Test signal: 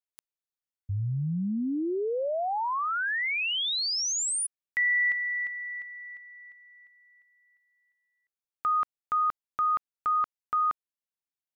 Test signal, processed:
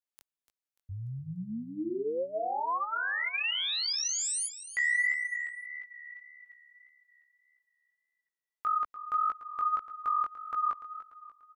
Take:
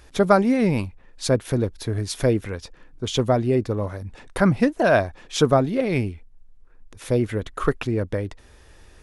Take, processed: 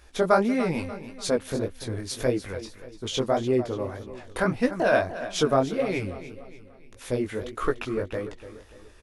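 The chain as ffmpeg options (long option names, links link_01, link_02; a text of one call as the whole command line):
ffmpeg -i in.wav -af "equalizer=frequency=130:width=0.92:gain=-8,aecho=1:1:293|586|879|1172:0.211|0.0909|0.0391|0.0168,flanger=delay=15.5:depth=7.4:speed=1.7" out.wav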